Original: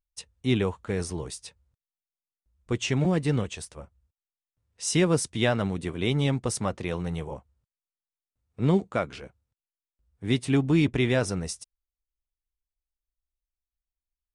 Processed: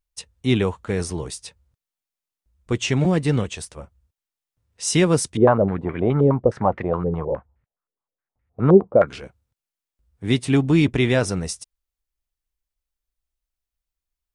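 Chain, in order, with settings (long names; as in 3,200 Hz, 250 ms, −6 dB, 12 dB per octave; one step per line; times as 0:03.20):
0:05.37–0:09.08: low-pass on a step sequencer 9.6 Hz 450–2,000 Hz
level +5 dB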